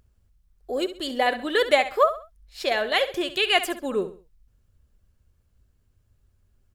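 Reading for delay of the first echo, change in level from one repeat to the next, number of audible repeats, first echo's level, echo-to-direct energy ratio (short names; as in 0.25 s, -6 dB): 66 ms, -9.5 dB, 3, -12.5 dB, -12.0 dB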